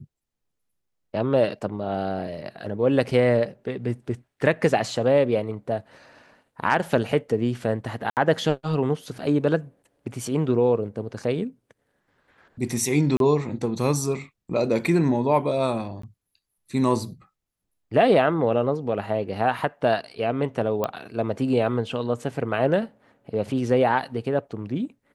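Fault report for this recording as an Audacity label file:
8.100000	8.170000	gap 68 ms
13.170000	13.200000	gap 32 ms
16.020000	16.030000	gap 14 ms
20.840000	20.840000	pop -12 dBFS

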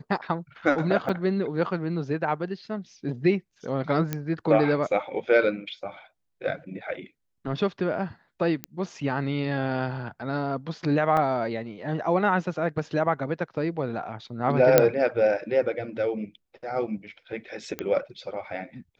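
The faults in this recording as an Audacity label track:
1.090000	1.090000	gap 4.7 ms
4.130000	4.130000	pop -13 dBFS
8.640000	8.640000	pop -14 dBFS
11.170000	11.170000	gap 2.6 ms
14.780000	14.780000	pop -2 dBFS
17.790000	17.790000	pop -15 dBFS

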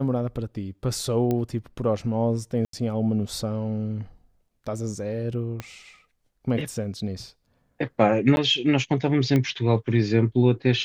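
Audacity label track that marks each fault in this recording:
1.310000	1.310000	pop -14 dBFS
2.650000	2.730000	gap 83 ms
5.600000	5.600000	pop -17 dBFS
8.360000	8.370000	gap 11 ms
9.360000	9.360000	pop -12 dBFS

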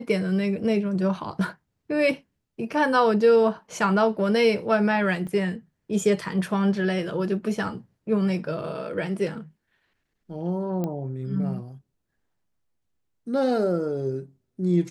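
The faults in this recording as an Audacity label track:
5.270000	5.270000	gap 3.7 ms
10.840000	10.840000	pop -17 dBFS

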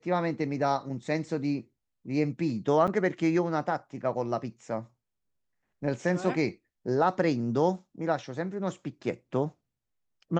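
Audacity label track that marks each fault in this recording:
2.870000	2.880000	gap 7.2 ms

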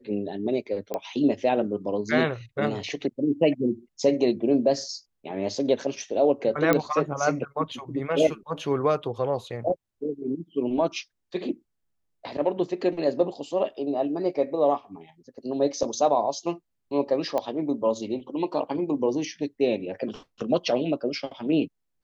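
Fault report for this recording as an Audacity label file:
0.940000	0.940000	pop -16 dBFS
6.730000	6.730000	pop -8 dBFS
17.380000	17.380000	pop -15 dBFS

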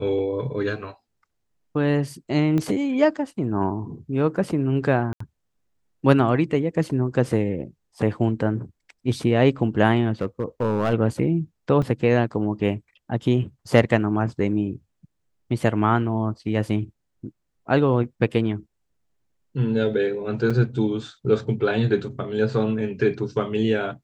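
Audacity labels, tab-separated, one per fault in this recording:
2.580000	2.580000	pop -14 dBFS
5.130000	5.200000	gap 74 ms
10.120000	10.930000	clipped -16 dBFS
11.820000	11.820000	gap 4.4 ms
20.500000	20.510000	gap 5.4 ms

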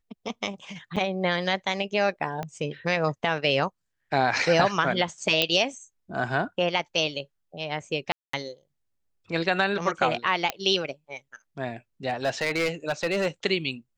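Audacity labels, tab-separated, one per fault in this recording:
0.960000	0.970000	gap 6.1 ms
2.430000	2.430000	pop -18 dBFS
5.420000	5.420000	pop -7 dBFS
8.120000	8.330000	gap 0.214 s
10.500000	10.500000	pop -10 dBFS
12.080000	13.270000	clipped -20 dBFS

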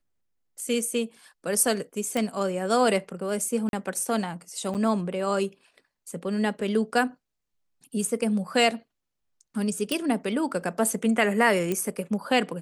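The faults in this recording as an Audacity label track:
2.170000	2.170000	pop -14 dBFS
3.690000	3.730000	gap 41 ms
4.740000	4.750000	gap 8.3 ms
9.920000	9.920000	pop -12 dBFS
11.720000	11.720000	pop -14 dBFS

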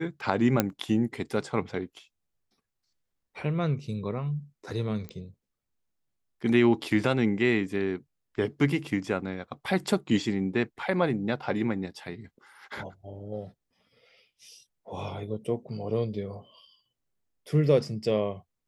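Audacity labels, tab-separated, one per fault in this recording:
0.600000	0.600000	pop -7 dBFS
5.090000	5.090000	pop -24 dBFS

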